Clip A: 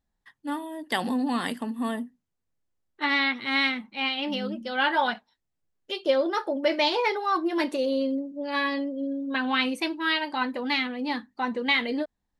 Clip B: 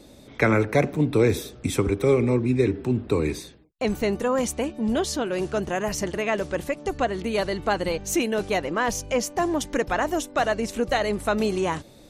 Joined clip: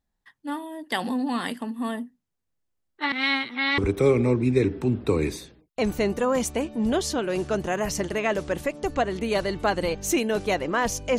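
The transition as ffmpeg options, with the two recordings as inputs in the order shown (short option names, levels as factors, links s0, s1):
-filter_complex "[0:a]apad=whole_dur=11.18,atrim=end=11.18,asplit=2[s0][s1];[s0]atrim=end=3.122[s2];[s1]atrim=start=3.118:end=3.782,asetpts=PTS-STARTPTS,areverse[s3];[1:a]atrim=start=1.808:end=9.21[s4];[s2][s3]acrossfade=d=0.004:c1=hsin:c2=hsin[s5];[s5][s4]acrossfade=d=0.004:c1=hsin:c2=hsin"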